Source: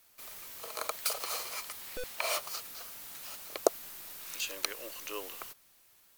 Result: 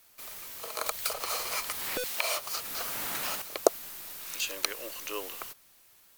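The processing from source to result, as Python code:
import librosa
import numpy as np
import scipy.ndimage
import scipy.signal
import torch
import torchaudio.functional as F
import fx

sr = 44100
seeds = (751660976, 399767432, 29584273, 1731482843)

y = fx.band_squash(x, sr, depth_pct=100, at=(0.86, 3.42))
y = y * 10.0 ** (3.5 / 20.0)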